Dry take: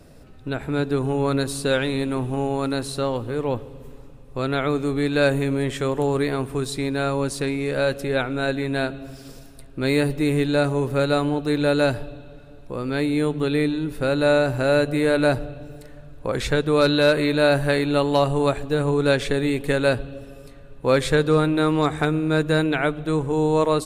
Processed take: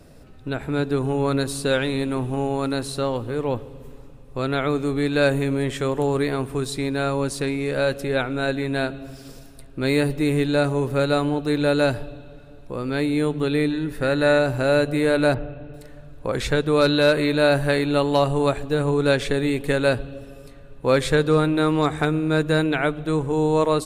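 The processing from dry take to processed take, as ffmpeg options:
-filter_complex "[0:a]asettb=1/sr,asplit=3[a][b][c];[a]atrim=end=13.704[d];[b]atrim=start=13.7:end=14.39,asetpts=PTS-STARTPTS,afade=t=in:d=0.004:c=qsin,afade=t=out:st=0.686:d=0.004:c=qsin,equalizer=f=1.8k:w=5.7:g=11[e];[c]atrim=start=14.386[f];[d][e]acrossfade=d=0.004:c1=hsin:c2=qsin[g];[g][f]acrossfade=d=0.004:c1=qsin:c2=hsin,asettb=1/sr,asplit=3[h][i][j];[h]atrim=end=15.344[k];[i]atrim=start=15.34:end=15.74,asetpts=PTS-STARTPTS,afade=t=in:d=0.004:c=qsin,afade=t=out:st=0.396:d=0.004:c=qsin,lowpass=f=3.2k:w=0.5412,lowpass=f=3.2k:w=1.3066[l];[j]atrim=start=15.736[m];[k][l]acrossfade=d=0.004:c1=hsin:c2=qsin[n];[n][m]acrossfade=d=0.004:c1=qsin:c2=hsin"

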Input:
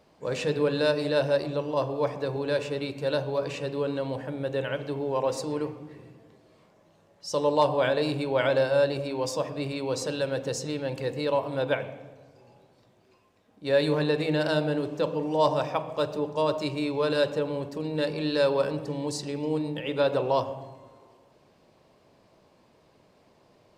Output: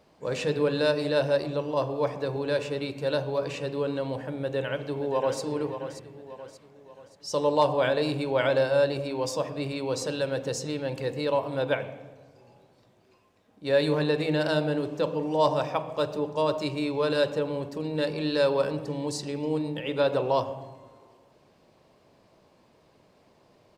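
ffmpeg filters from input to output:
-filter_complex "[0:a]asplit=2[a][b];[b]afade=t=in:st=4.36:d=0.01,afade=t=out:st=5.41:d=0.01,aecho=0:1:580|1160|1740|2320|2900:0.316228|0.142302|0.0640361|0.0288163|0.0129673[c];[a][c]amix=inputs=2:normalize=0"

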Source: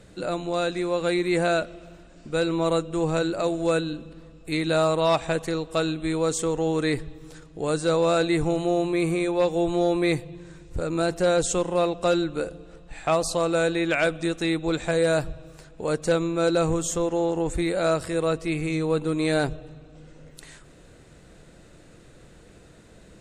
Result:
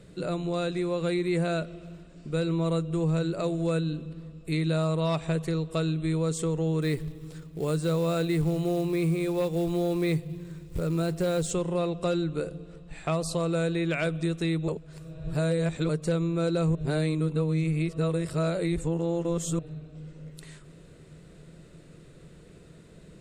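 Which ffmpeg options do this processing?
-filter_complex "[0:a]asettb=1/sr,asplit=3[a][b][c];[a]atrim=end=6.824[d];[b]atrim=start=6.82:end=11.51,asetpts=PTS-STARTPTS,afade=t=in:d=0.004:c=qsin,afade=t=out:st=4.686:d=0.004:c=qsin,acrusher=bits=5:mode=log:mix=0:aa=0.000001[e];[c]atrim=start=11.506[f];[d][e]acrossfade=d=0.004:c1=hsin:c2=qsin[g];[g][f]acrossfade=d=0.004:c1=qsin:c2=hsin,asplit=5[h][i][j][k][l];[h]atrim=end=14.682[m];[i]atrim=start=14.678:end=15.892,asetpts=PTS-STARTPTS,areverse[n];[j]atrim=start=15.888:end=16.752[o];[k]atrim=start=16.748:end=19.592,asetpts=PTS-STARTPTS,areverse[p];[l]atrim=start=19.588[q];[m][n]acrossfade=d=0.004:c1=hsin:c2=hsin[r];[r][o]acrossfade=d=0.004:c1=hsin:c2=hsin[s];[s][p]acrossfade=d=0.004:c1=hsin:c2=hsin[t];[t][q]acrossfade=d=0.004:c1=hsin:c2=hsin,equalizer=f=160:t=o:w=0.33:g=12,equalizer=f=400:t=o:w=0.33:g=5,equalizer=f=800:t=o:w=0.33:g=-6,equalizer=f=1.6k:t=o:w=0.33:g=-3,equalizer=f=6.3k:t=o:w=0.33:g=-4,acompressor=threshold=-23dB:ratio=2,volume=-3dB"

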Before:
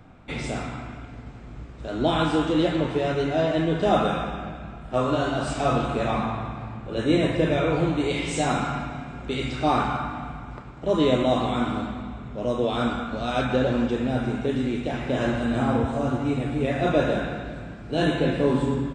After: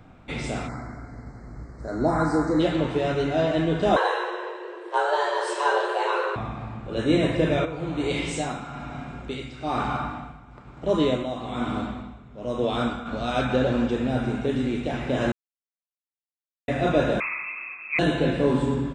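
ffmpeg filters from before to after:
-filter_complex "[0:a]asplit=3[a][b][c];[a]afade=t=out:st=0.67:d=0.02[d];[b]asuperstop=centerf=3000:order=12:qfactor=1.5,afade=t=in:st=0.67:d=0.02,afade=t=out:st=2.59:d=0.02[e];[c]afade=t=in:st=2.59:d=0.02[f];[d][e][f]amix=inputs=3:normalize=0,asettb=1/sr,asplit=3[g][h][i];[g]atrim=end=3.964[j];[h]atrim=start=3.96:end=6.36,asetpts=PTS-STARTPTS,afade=t=in:d=0.004:c=qsin,afade=t=out:st=2.396:d=0.004:c=qsin,afreqshift=300[k];[i]atrim=start=6.356[l];[j][k]acrossfade=d=0.004:c1=hsin:c2=qsin[m];[m][l]acrossfade=d=0.004:c1=qsin:c2=hsin,asplit=3[n][o][p];[n]afade=t=out:st=7.64:d=0.02[q];[o]tremolo=f=1.1:d=0.69,afade=t=in:st=7.64:d=0.02,afade=t=out:st=13.05:d=0.02[r];[p]afade=t=in:st=13.05:d=0.02[s];[q][r][s]amix=inputs=3:normalize=0,asettb=1/sr,asplit=3[t][u][v];[t]atrim=end=17.204[w];[u]atrim=start=17.2:end=17.99,asetpts=PTS-STARTPTS,afade=t=in:d=0.004:c=qsin,afade=t=out:st=0.786:d=0.004:c=qsin,lowpass=f=2.3k:t=q:w=0.5098,lowpass=f=2.3k:t=q:w=0.6013,lowpass=f=2.3k:t=q:w=0.9,lowpass=f=2.3k:t=q:w=2.563,afreqshift=-2700[x];[v]atrim=start=17.986[y];[w][x]acrossfade=d=0.004:c1=hsin:c2=qsin[z];[z][y]acrossfade=d=0.004:c1=qsin:c2=hsin,asplit=3[aa][ab][ac];[aa]atrim=end=15.32,asetpts=PTS-STARTPTS,afade=t=out:st=15.316:d=0.004:c=hsin[ad];[ab]atrim=start=15.32:end=16.68,asetpts=PTS-STARTPTS,volume=0[ae];[ac]atrim=start=16.68,asetpts=PTS-STARTPTS,afade=t=in:d=0.004:c=hsin[af];[ad][ae][af]concat=n=3:v=0:a=1"

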